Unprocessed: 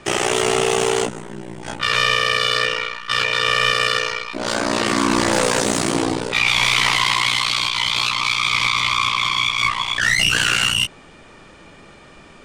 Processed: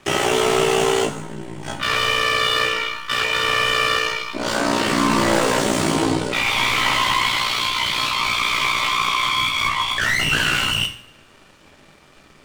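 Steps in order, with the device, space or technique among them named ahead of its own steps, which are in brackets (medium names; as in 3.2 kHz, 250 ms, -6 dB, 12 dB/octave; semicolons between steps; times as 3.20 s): 8.36–9.27 s: steep high-pass 240 Hz 72 dB/octave; early transistor amplifier (crossover distortion -45.5 dBFS; slew-rate limiter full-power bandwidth 330 Hz); two-slope reverb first 0.49 s, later 1.9 s, from -25 dB, DRR 4.5 dB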